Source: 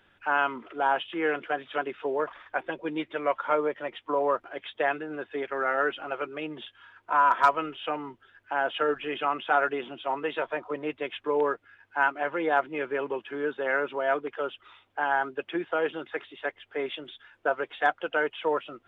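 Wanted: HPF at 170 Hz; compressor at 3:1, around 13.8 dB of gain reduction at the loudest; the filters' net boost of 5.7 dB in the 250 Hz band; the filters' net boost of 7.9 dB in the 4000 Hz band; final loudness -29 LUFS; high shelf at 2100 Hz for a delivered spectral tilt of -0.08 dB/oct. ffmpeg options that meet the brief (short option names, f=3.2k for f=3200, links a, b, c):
-af "highpass=170,equalizer=f=250:t=o:g=8,highshelf=f=2.1k:g=4.5,equalizer=f=4k:t=o:g=7,acompressor=threshold=-33dB:ratio=3,volume=6.5dB"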